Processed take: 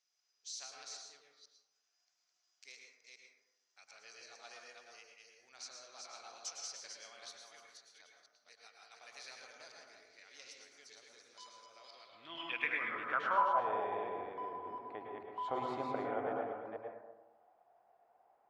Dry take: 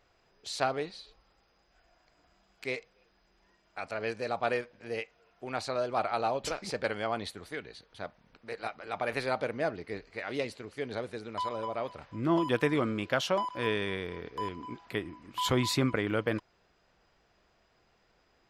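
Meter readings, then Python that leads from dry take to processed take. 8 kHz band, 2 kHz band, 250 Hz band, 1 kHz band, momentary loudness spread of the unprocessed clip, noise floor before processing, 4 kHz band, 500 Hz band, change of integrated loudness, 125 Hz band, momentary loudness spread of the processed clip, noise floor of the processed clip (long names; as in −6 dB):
−3.5 dB, −6.5 dB, −17.0 dB, −4.0 dB, 13 LU, −70 dBFS, −11.0 dB, −11.5 dB, −6.5 dB, −23.5 dB, 22 LU, −82 dBFS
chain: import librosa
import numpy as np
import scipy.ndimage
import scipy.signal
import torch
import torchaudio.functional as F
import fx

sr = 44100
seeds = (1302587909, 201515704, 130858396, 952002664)

y = fx.reverse_delay(x, sr, ms=243, wet_db=-3.0)
y = fx.peak_eq(y, sr, hz=12000.0, db=-4.0, octaves=1.8)
y = fx.filter_sweep_bandpass(y, sr, from_hz=6000.0, to_hz=750.0, start_s=11.74, end_s=13.62, q=5.9)
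y = fx.rev_plate(y, sr, seeds[0], rt60_s=1.0, hf_ratio=0.3, predelay_ms=95, drr_db=0.5)
y = y * librosa.db_to_amplitude(4.0)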